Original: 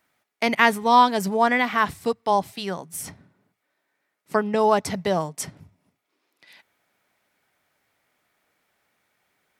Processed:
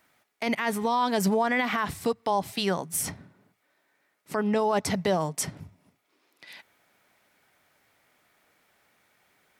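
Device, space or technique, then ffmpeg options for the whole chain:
stacked limiters: -af "alimiter=limit=-8.5dB:level=0:latency=1:release=224,alimiter=limit=-14.5dB:level=0:latency=1:release=41,alimiter=limit=-20.5dB:level=0:latency=1:release=139,volume=4.5dB"

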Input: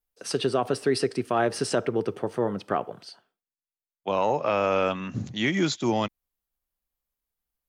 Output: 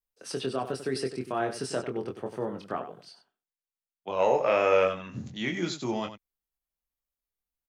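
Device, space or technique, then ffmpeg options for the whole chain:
slapback doubling: -filter_complex "[0:a]asplit=3[a][b][c];[a]afade=t=out:st=4.18:d=0.02[d];[b]equalizer=f=500:t=o:w=1:g=9,equalizer=f=2k:t=o:w=1:g=11,equalizer=f=8k:t=o:w=1:g=9,afade=t=in:st=4.18:d=0.02,afade=t=out:st=4.84:d=0.02[e];[c]afade=t=in:st=4.84:d=0.02[f];[d][e][f]amix=inputs=3:normalize=0,asplit=3[g][h][i];[h]adelay=23,volume=-5dB[j];[i]adelay=95,volume=-11dB[k];[g][j][k]amix=inputs=3:normalize=0,volume=-7.5dB"

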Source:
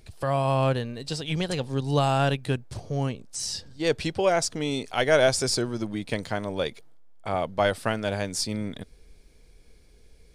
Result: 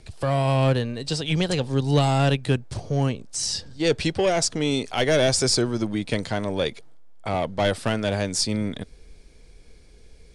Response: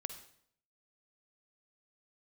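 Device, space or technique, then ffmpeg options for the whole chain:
one-band saturation: -filter_complex "[0:a]lowpass=f=10k:w=0.5412,lowpass=f=10k:w=1.3066,acrossover=split=440|2400[a][b][c];[b]asoftclip=type=tanh:threshold=-28dB[d];[a][d][c]amix=inputs=3:normalize=0,volume=5dB"

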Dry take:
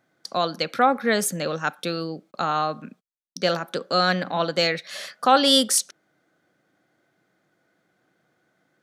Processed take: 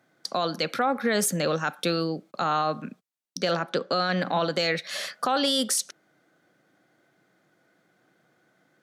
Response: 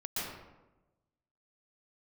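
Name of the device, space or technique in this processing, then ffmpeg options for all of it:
podcast mastering chain: -filter_complex "[0:a]asettb=1/sr,asplit=3[a][b][c];[a]atrim=end=3.514[d];[b]atrim=start=3.51:end=4.17,asetpts=PTS-STARTPTS,afade=t=in:d=0.004:c=qsin,afade=t=out:st=0.656:d=0.004:c=qsin,lowpass=5.3k[e];[c]atrim=start=4.166[f];[d][e]acrossfade=d=0.004:c1=hsin:c2=qsin[g];[g][f]acrossfade=d=0.004:c1=qsin:c2=hsin,highpass=f=100:w=0.5412,highpass=f=100:w=1.3066,acompressor=threshold=-21dB:ratio=3,alimiter=limit=-17.5dB:level=0:latency=1:release=14,volume=3dB" -ar 44100 -c:a libmp3lame -b:a 112k

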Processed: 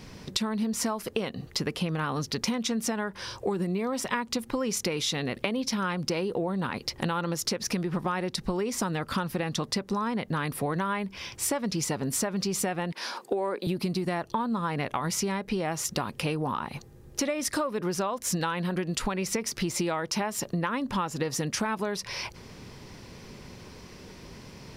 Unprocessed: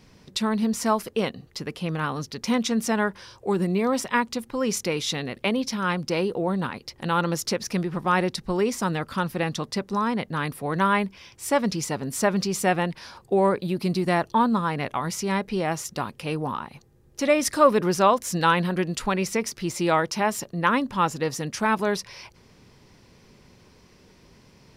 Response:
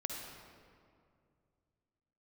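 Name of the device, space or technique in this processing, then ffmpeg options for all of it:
serial compression, leveller first: -filter_complex "[0:a]asettb=1/sr,asplit=3[a][b][c];[a]atrim=end=12.924[d];[b]atrim=start=12.92:end=13.67,asetpts=PTS-STARTPTS,afade=t=in:d=0.004:c=qsin,afade=t=out:st=0.746:d=0.004:c=qsin,highpass=f=250:w=0.5412,highpass=f=250:w=1.3066[e];[c]atrim=start=13.666[f];[d][e]acrossfade=d=0.004:c1=hsin:c2=qsin[g];[g][f]acrossfade=d=0.004:c1=qsin:c2=hsin,acompressor=threshold=-26dB:ratio=3,acompressor=threshold=-34dB:ratio=6,volume=8dB"

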